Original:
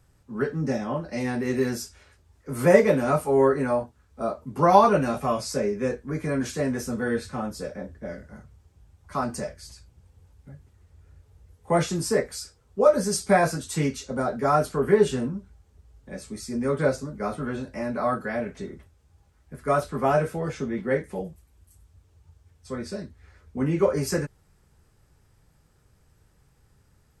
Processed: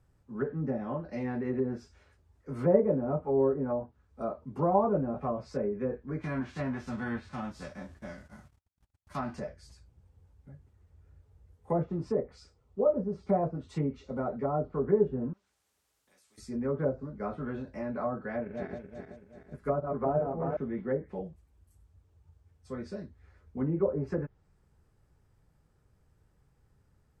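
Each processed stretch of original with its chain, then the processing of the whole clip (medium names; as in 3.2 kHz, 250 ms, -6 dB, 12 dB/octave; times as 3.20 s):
6.21–9.38 s: formants flattened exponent 0.6 + peaking EQ 470 Hz -12.5 dB 0.32 oct + gate -51 dBFS, range -35 dB
11.85–14.80 s: treble shelf 9.8 kHz -8.5 dB + band-stop 1.6 kHz, Q 6.1
15.33–16.38 s: differentiator + compression 2.5:1, threshold -55 dBFS + spectrum-flattening compressor 2:1
18.30–20.57 s: backward echo that repeats 189 ms, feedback 63%, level -4 dB + transient shaper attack +2 dB, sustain -5 dB
whole clip: low-pass that closes with the level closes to 710 Hz, closed at -19.5 dBFS; treble shelf 2.1 kHz -8.5 dB; trim -5.5 dB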